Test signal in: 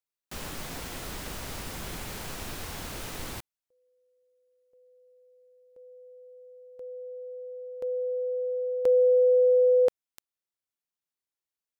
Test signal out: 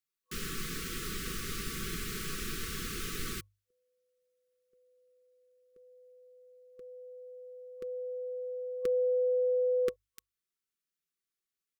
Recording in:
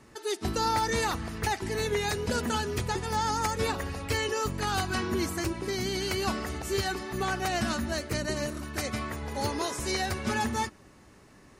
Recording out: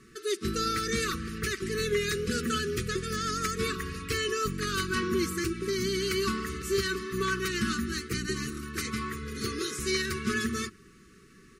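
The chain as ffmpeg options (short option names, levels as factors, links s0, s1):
-af "bandreject=f=50:t=h:w=6,bandreject=f=100:t=h:w=6,aecho=1:1:5.3:0.38,afftfilt=real='re*(1-between(b*sr/4096,500,1100))':imag='im*(1-between(b*sr/4096,500,1100))':win_size=4096:overlap=0.75"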